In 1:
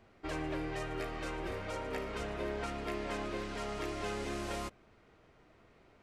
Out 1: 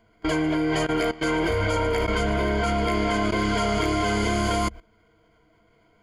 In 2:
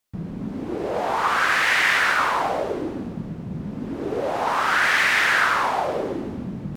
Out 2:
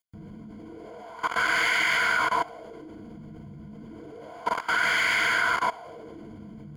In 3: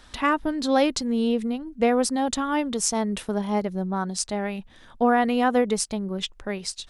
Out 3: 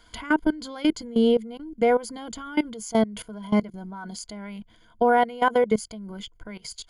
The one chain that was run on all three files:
ripple EQ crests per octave 1.8, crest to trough 15 dB; level quantiser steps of 19 dB; match loudness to -24 LUFS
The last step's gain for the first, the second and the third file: +15.0, -4.5, +1.0 dB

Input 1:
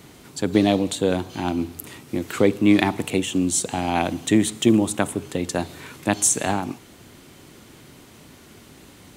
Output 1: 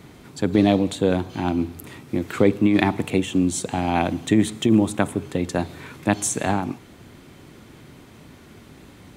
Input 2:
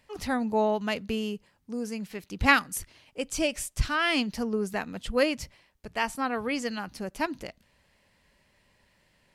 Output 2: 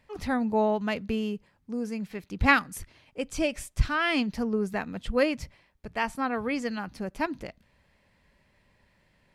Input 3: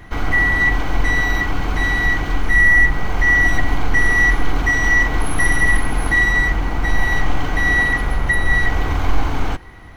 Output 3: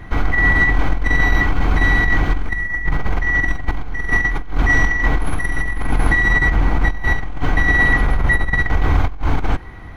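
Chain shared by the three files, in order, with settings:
tone controls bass +3 dB, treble -7 dB; notch 2900 Hz, Q 20; negative-ratio compressor -14 dBFS, ratio -0.5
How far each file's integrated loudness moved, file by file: 0.0, 0.0, -1.0 LU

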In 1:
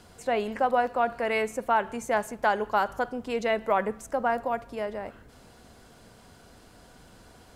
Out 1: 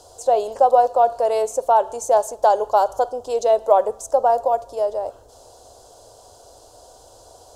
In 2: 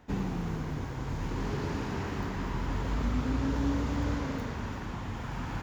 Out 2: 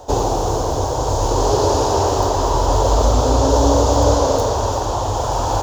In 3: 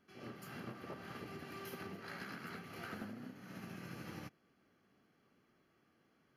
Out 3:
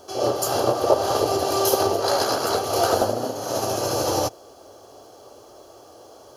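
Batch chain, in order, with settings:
EQ curve 110 Hz 0 dB, 180 Hz -20 dB, 320 Hz 0 dB, 580 Hz +13 dB, 920 Hz +8 dB, 2100 Hz -17 dB, 3300 Hz +2 dB, 6500 Hz +13 dB, 15000 Hz +4 dB; normalise peaks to -2 dBFS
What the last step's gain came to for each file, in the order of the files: 0.0, +15.0, +24.0 dB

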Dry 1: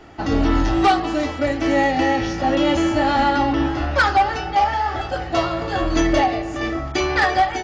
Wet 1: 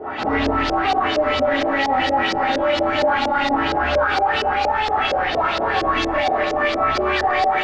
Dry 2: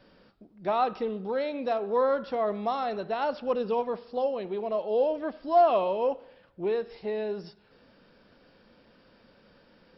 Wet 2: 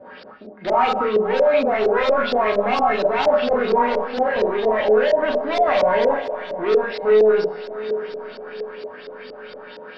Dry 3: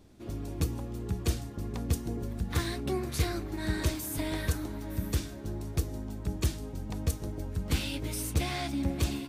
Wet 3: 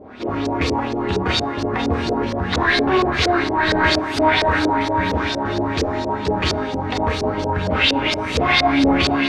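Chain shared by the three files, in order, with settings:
overdrive pedal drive 31 dB, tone 2900 Hz, clips at -9.5 dBFS; resonator 85 Hz, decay 0.28 s, harmonics odd, mix 80%; diffused feedback echo 0.621 s, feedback 49%, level -14 dB; Schroeder reverb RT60 0.32 s, combs from 29 ms, DRR 0.5 dB; LFO low-pass saw up 4.3 Hz 460–5500 Hz; maximiser +10 dB; match loudness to -19 LUFS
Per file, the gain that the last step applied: -9.0, -7.0, -1.5 dB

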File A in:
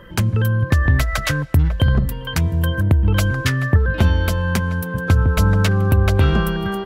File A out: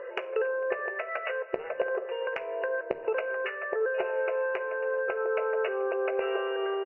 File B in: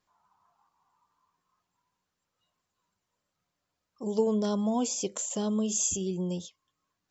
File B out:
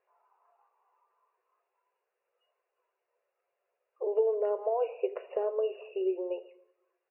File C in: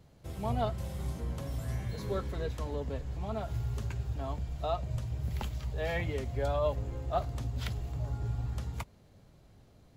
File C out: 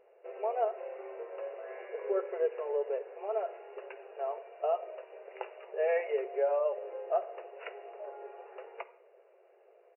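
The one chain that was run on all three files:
brick-wall FIR band-pass 370–2900 Hz; compressor 5:1, threshold -32 dBFS; resonant low shelf 750 Hz +6.5 dB, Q 1.5; doubler 16 ms -13.5 dB; shoebox room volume 2000 m³, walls furnished, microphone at 0.75 m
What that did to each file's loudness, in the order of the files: -12.5, -2.5, +0.5 LU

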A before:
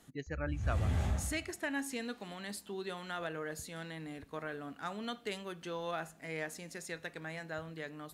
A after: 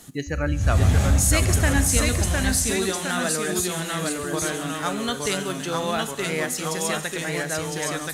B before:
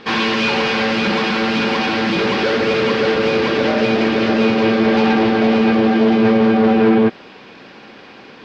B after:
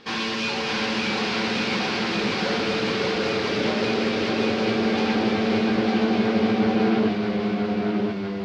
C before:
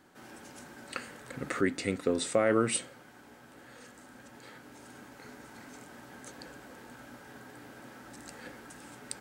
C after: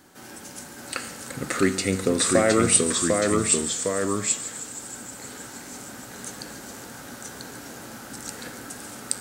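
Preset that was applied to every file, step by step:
tone controls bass +2 dB, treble +9 dB; resonator 95 Hz, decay 1 s, harmonics all, mix 60%; thin delay 0.14 s, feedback 84%, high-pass 5600 Hz, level -11.5 dB; echoes that change speed 0.609 s, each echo -1 st, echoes 2; match loudness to -23 LUFS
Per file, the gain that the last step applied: +19.0, -3.5, +12.5 dB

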